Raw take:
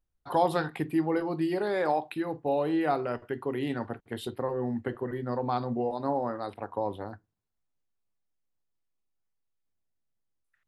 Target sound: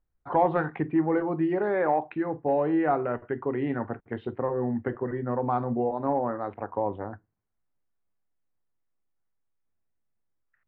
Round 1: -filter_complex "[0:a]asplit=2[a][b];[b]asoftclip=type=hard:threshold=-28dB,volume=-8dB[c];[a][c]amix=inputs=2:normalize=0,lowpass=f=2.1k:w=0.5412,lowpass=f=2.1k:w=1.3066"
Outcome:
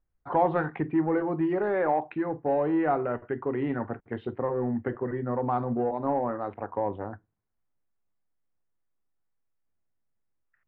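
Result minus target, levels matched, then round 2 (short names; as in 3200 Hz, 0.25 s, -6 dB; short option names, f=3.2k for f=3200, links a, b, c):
hard clip: distortion +9 dB
-filter_complex "[0:a]asplit=2[a][b];[b]asoftclip=type=hard:threshold=-21dB,volume=-8dB[c];[a][c]amix=inputs=2:normalize=0,lowpass=f=2.1k:w=0.5412,lowpass=f=2.1k:w=1.3066"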